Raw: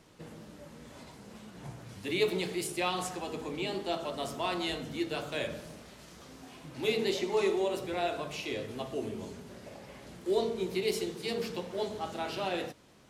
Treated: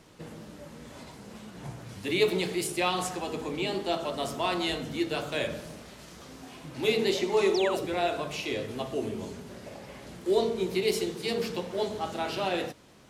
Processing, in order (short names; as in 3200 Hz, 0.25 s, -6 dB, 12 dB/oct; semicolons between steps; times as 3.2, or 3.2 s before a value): painted sound fall, 7.54–7.86, 250–6300 Hz -39 dBFS; gain +4 dB